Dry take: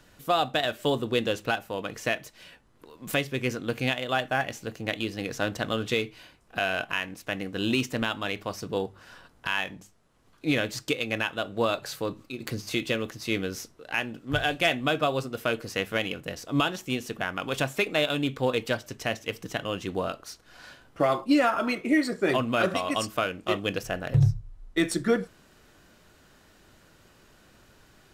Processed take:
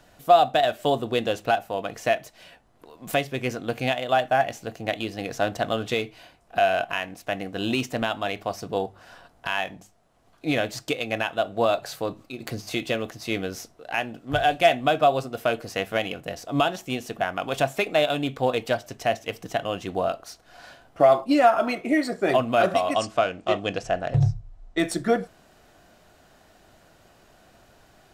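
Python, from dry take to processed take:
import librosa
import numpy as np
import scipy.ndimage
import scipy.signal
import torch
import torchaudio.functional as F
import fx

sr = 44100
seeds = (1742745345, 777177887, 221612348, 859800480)

y = fx.lowpass(x, sr, hz=8300.0, slope=24, at=(22.94, 24.79))
y = fx.peak_eq(y, sr, hz=700.0, db=11.5, octaves=0.43)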